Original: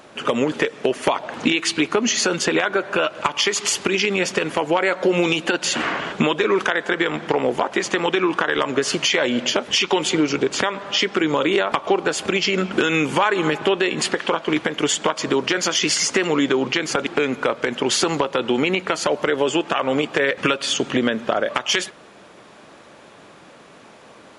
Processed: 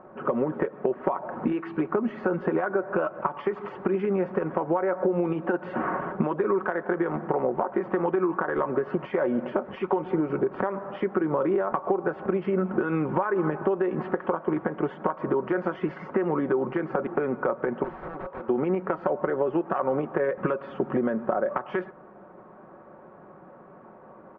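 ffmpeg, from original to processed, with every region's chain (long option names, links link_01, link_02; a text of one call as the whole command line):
ffmpeg -i in.wav -filter_complex "[0:a]asettb=1/sr,asplit=3[link_01][link_02][link_03];[link_01]atrim=end=17.844[link_04];[link_02]atrim=start=17.84:end=18.49,asetpts=PTS-STARTPTS,afade=type=in:duration=0.004:curve=qsin,afade=type=out:start_time=0.646:duration=0.004:curve=qsin,highpass=frequency=870:poles=1,aeval=exprs='(mod(14.1*val(0)+1,2)-1)/14.1':channel_layout=same[link_05];[link_03]atrim=start=18.486[link_06];[link_04][link_05]acrossfade=duration=0.004:curve1=hsin:curve2=qsin[link_07];[link_07][link_06]acrossfade=duration=0.004:curve1=qsin:curve2=hsin,lowpass=frequency=1300:width=0.5412,lowpass=frequency=1300:width=1.3066,aecho=1:1:5.4:0.44,acompressor=threshold=-18dB:ratio=6,volume=-2.5dB" out.wav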